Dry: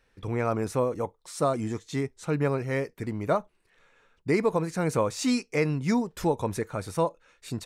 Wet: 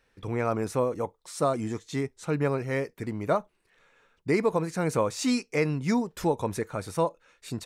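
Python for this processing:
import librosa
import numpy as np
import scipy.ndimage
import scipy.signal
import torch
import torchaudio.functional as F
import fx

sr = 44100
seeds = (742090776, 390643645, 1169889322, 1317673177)

y = fx.low_shelf(x, sr, hz=76.0, db=-5.5)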